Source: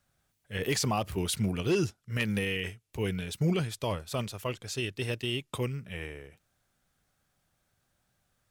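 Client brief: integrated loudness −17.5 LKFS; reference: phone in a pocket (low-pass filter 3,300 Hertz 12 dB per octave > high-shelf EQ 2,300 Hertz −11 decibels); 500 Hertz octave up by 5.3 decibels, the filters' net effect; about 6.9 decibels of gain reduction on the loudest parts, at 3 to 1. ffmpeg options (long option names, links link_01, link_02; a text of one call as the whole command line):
ffmpeg -i in.wav -af "equalizer=frequency=500:width_type=o:gain=7.5,acompressor=threshold=-29dB:ratio=3,lowpass=3300,highshelf=frequency=2300:gain=-11,volume=18dB" out.wav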